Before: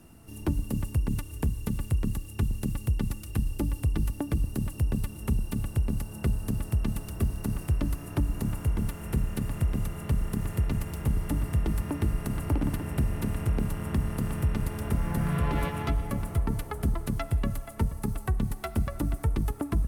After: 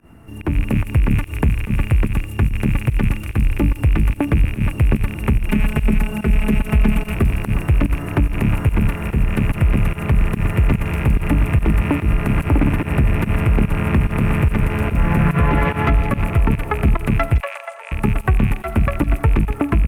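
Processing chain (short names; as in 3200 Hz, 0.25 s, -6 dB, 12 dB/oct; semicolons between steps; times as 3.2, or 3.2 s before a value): rattling part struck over -36 dBFS, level -32 dBFS; 5.48–7.14 comb 4.7 ms, depth 91%; 17.4–17.92 Chebyshev band-pass 520–9200 Hz, order 5; in parallel at -7 dB: one-sided clip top -27 dBFS; on the sum: limiter -18 dBFS, peak gain reduction 5.5 dB; AGC gain up to 6 dB; resonant high shelf 3100 Hz -12 dB, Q 1.5; pump 145 bpm, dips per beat 1, -20 dB, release 98 ms; on a send: thin delay 0.164 s, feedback 48%, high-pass 4900 Hz, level -3.5 dB; on the sum: gain +5 dB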